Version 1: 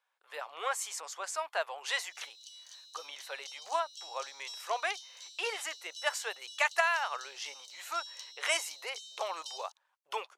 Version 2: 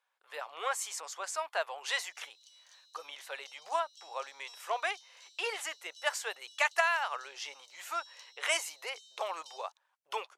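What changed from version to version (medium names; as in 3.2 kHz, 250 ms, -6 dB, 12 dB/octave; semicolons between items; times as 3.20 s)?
second sound -8.5 dB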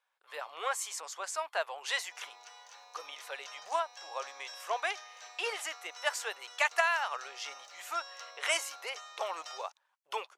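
first sound +5.5 dB; second sound: remove rippled Chebyshev high-pass 2.9 kHz, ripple 6 dB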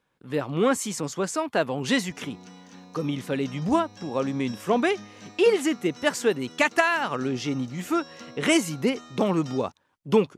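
speech +5.5 dB; master: remove inverse Chebyshev high-pass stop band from 260 Hz, stop band 50 dB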